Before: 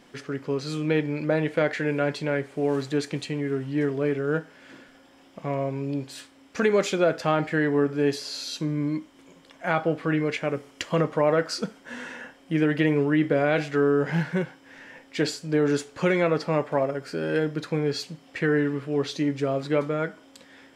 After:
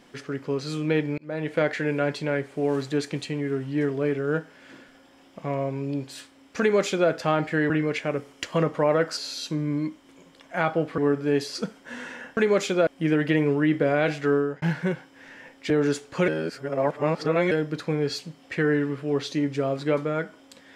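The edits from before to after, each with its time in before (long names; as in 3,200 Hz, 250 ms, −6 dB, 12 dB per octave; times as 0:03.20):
0:01.18–0:01.57: fade in
0:06.60–0:07.10: duplicate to 0:12.37
0:07.70–0:08.27: swap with 0:10.08–0:11.55
0:13.84–0:14.12: fade out
0:15.20–0:15.54: remove
0:16.12–0:17.35: reverse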